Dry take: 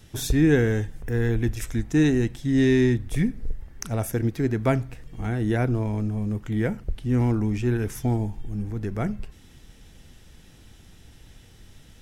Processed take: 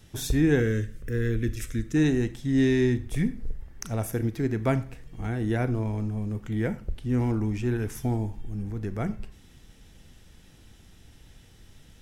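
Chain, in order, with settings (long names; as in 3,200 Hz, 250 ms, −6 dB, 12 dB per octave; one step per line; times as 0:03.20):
0:00.60–0:01.96: Butterworth band-reject 830 Hz, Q 1.5
on a send: convolution reverb RT60 0.40 s, pre-delay 27 ms, DRR 14 dB
on the sum: level −3 dB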